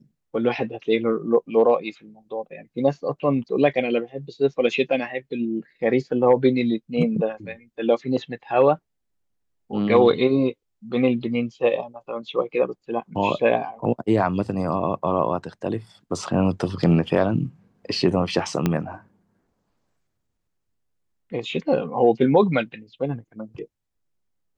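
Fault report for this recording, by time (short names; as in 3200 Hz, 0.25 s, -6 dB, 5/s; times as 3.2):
18.66 pop -8 dBFS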